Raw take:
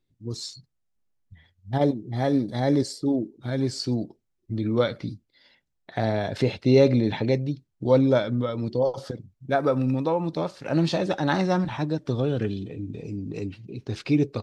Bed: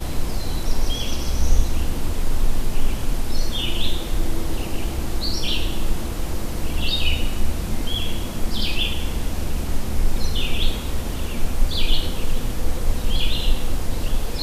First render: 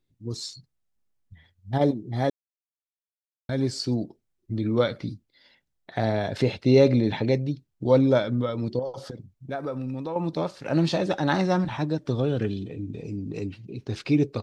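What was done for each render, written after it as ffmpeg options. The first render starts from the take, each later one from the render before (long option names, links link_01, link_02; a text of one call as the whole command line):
ffmpeg -i in.wav -filter_complex "[0:a]asettb=1/sr,asplit=3[link_01][link_02][link_03];[link_01]atrim=end=8.794[link_04];[link_02]atrim=start=8.79:end=10.16,asetpts=PTS-STARTPTS,afade=type=in:duration=0.004:curve=qsin,afade=type=out:start_time=1.366:duration=0.004:curve=qsin,acompressor=threshold=-34dB:ratio=2:attack=3.2:release=140:knee=1:detection=peak[link_05];[link_03]atrim=start=10.156[link_06];[link_04][link_05]acrossfade=duration=0.004:curve1=hsin:curve2=qsin[link_07];[link_07][link_06]acrossfade=duration=0.004:curve1=qsin:curve2=hsin,asplit=3[link_08][link_09][link_10];[link_08]atrim=end=2.3,asetpts=PTS-STARTPTS,afade=type=out:start_time=2.296:duration=0.004:curve=hsin[link_11];[link_09]atrim=start=2.3:end=3.49,asetpts=PTS-STARTPTS,volume=0[link_12];[link_10]atrim=start=3.49,asetpts=PTS-STARTPTS,afade=type=in:duration=0.004:curve=hsin[link_13];[link_11][link_12][link_13]concat=n=3:v=0:a=1" out.wav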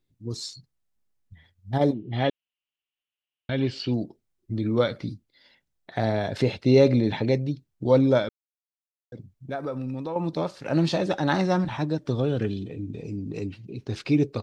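ffmpeg -i in.wav -filter_complex "[0:a]asettb=1/sr,asplit=3[link_01][link_02][link_03];[link_01]atrim=end=1.944[link_04];[link_02]atrim=start=1.94:end=3.94,asetpts=PTS-STARTPTS,afade=type=in:duration=0.004:curve=qsin,afade=type=out:start_time=1.996:duration=0.004:curve=qsin,lowpass=frequency=2900:width_type=q:width=8.9[link_05];[link_03]atrim=start=3.936[link_06];[link_04][link_05]acrossfade=duration=0.004:curve1=hsin:curve2=qsin[link_07];[link_07][link_06]acrossfade=duration=0.004:curve1=qsin:curve2=hsin,asplit=3[link_08][link_09][link_10];[link_08]atrim=end=8.29,asetpts=PTS-STARTPTS,afade=type=out:start_time=8.286:duration=0.004:curve=hsin[link_11];[link_09]atrim=start=8.29:end=9.12,asetpts=PTS-STARTPTS,volume=0[link_12];[link_10]atrim=start=9.12,asetpts=PTS-STARTPTS,afade=type=in:duration=0.004:curve=hsin[link_13];[link_11][link_12][link_13]concat=n=3:v=0:a=1" out.wav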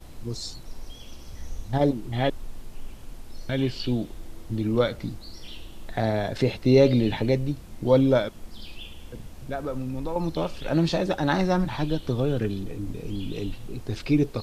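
ffmpeg -i in.wav -i bed.wav -filter_complex "[1:a]volume=-18.5dB[link_01];[0:a][link_01]amix=inputs=2:normalize=0" out.wav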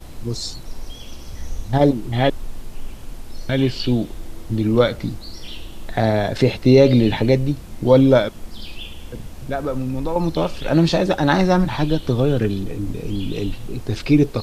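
ffmpeg -i in.wav -af "volume=7dB,alimiter=limit=-2dB:level=0:latency=1" out.wav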